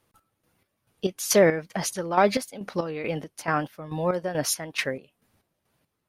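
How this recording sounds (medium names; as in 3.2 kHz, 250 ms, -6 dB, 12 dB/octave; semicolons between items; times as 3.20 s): chopped level 2.3 Hz, depth 65%, duty 45%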